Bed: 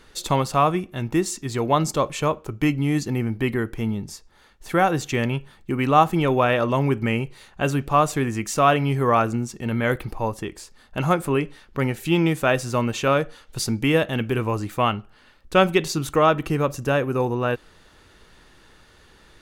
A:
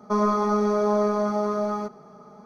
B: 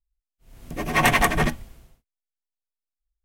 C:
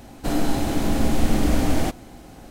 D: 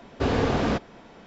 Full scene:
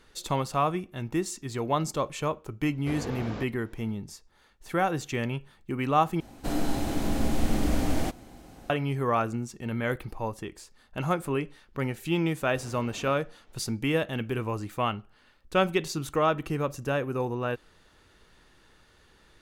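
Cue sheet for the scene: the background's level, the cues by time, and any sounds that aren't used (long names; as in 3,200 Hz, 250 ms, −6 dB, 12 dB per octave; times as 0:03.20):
bed −7 dB
0:02.66: mix in D −13 dB
0:06.20: overwrite with C −6 dB
0:12.35: mix in D −16.5 dB + downward compressor, threshold −27 dBFS
not used: A, B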